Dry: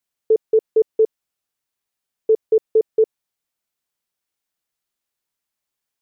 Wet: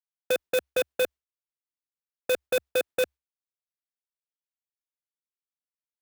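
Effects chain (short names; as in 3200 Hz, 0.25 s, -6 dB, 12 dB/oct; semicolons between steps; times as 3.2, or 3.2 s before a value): gate with hold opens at -32 dBFS; frequency shift +67 Hz; added harmonics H 7 -9 dB, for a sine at -8.5 dBFS; clock jitter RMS 0.032 ms; gain -9 dB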